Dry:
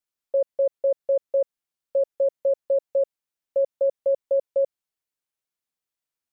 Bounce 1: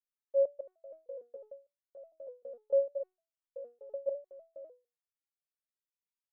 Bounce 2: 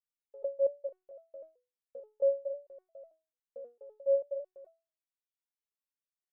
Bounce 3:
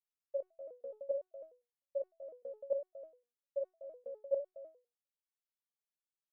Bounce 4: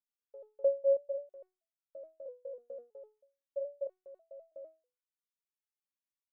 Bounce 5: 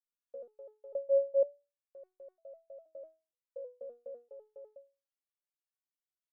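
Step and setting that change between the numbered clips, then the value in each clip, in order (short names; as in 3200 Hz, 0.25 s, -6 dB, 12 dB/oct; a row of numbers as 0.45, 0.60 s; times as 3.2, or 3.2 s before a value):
stepped resonator, rate: 6.6, 4.5, 9.9, 3.1, 2.1 Hz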